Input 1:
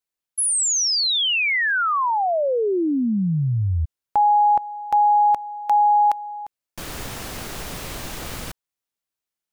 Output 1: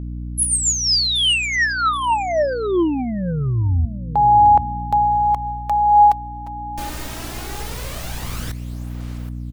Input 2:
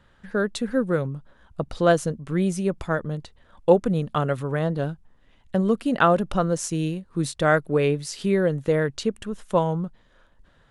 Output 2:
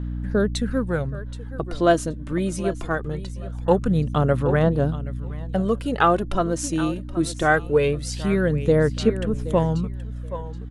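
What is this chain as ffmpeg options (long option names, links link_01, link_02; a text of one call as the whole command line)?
ffmpeg -i in.wav -af "aeval=exprs='val(0)+0.0251*(sin(2*PI*60*n/s)+sin(2*PI*2*60*n/s)/2+sin(2*PI*3*60*n/s)/3+sin(2*PI*4*60*n/s)/4+sin(2*PI*5*60*n/s)/5)':channel_layout=same,aecho=1:1:775|1550:0.178|0.0391,aphaser=in_gain=1:out_gain=1:delay=3.3:decay=0.46:speed=0.22:type=sinusoidal" out.wav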